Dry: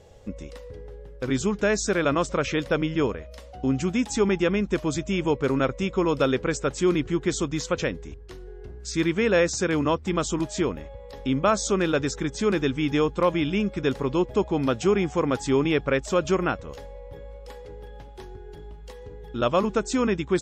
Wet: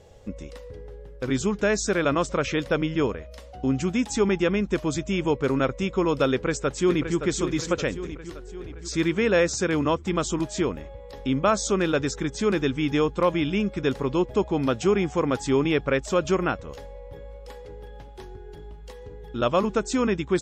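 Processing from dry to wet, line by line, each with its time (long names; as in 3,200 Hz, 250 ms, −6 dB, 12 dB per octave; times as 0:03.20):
0:06.31–0:07.17: delay throw 570 ms, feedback 55%, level −8.5 dB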